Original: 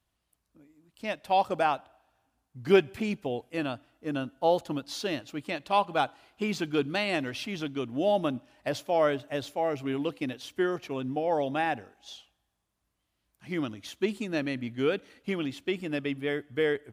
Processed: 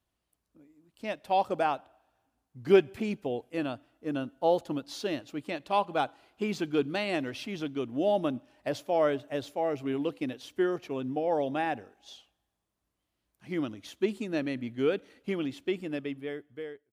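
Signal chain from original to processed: fade out at the end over 1.25 s; peaking EQ 380 Hz +4.5 dB 1.9 oct; trim -4 dB

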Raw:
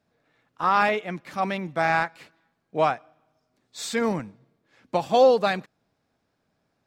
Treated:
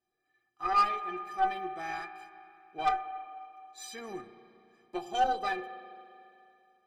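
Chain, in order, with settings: inharmonic resonator 360 Hz, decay 0.21 s, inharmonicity 0.03; spring tank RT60 2.7 s, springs 34/54 ms, chirp 70 ms, DRR 10 dB; Chebyshev shaper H 6 -18 dB, 8 -28 dB, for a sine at -18.5 dBFS; trim +3.5 dB

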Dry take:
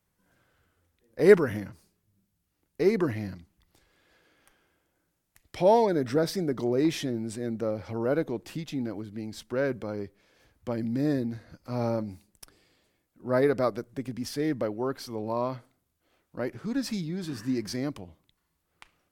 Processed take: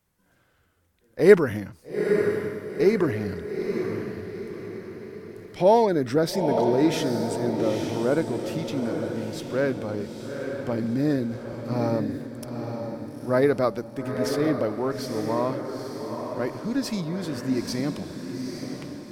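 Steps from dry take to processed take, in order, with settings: 3.13–5.60 s: transient shaper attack -8 dB, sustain +6 dB; echo that smears into a reverb 882 ms, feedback 46%, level -5.5 dB; trim +3 dB

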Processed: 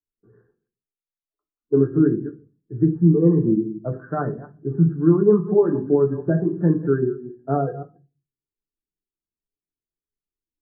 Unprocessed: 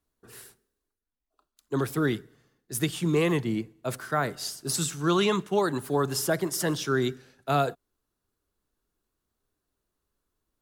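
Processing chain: chunks repeated in reverse 135 ms, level -13.5 dB; steep low-pass 1.8 kHz 96 dB/octave; peaking EQ 240 Hz +10.5 dB 3 oct; compression 4:1, threshold -19 dBFS, peak gain reduction 8 dB; simulated room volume 32 m³, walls mixed, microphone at 0.38 m; spectral contrast expander 1.5:1; trim +2.5 dB

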